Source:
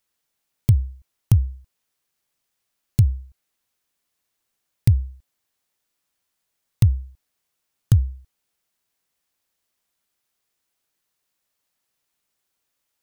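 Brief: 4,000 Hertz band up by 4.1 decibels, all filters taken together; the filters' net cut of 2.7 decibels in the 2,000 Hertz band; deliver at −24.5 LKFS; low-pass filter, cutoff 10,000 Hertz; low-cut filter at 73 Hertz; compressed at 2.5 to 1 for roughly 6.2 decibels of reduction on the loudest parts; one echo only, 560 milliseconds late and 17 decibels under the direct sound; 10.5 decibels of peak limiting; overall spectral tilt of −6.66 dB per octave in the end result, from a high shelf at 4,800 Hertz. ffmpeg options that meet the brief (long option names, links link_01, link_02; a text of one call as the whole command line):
ffmpeg -i in.wav -af "highpass=73,lowpass=10000,equalizer=frequency=2000:width_type=o:gain=-6,equalizer=frequency=4000:width_type=o:gain=3.5,highshelf=frequency=4800:gain=6.5,acompressor=threshold=-20dB:ratio=2.5,alimiter=limit=-17dB:level=0:latency=1,aecho=1:1:560:0.141,volume=10dB" out.wav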